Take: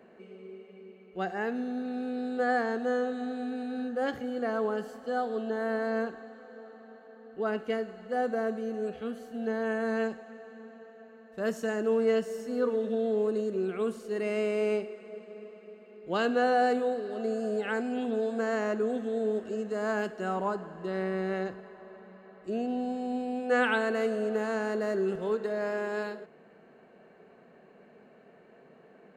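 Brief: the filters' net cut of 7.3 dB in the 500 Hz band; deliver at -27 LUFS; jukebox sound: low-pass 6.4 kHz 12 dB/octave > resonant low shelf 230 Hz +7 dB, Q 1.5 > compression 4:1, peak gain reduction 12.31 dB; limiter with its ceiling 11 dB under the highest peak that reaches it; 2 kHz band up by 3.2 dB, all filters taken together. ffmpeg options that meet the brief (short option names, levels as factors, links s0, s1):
-af "equalizer=f=500:t=o:g=-7.5,equalizer=f=2000:t=o:g=5,alimiter=limit=0.0631:level=0:latency=1,lowpass=6400,lowshelf=f=230:t=q:w=1.5:g=7,acompressor=threshold=0.00891:ratio=4,volume=6.68"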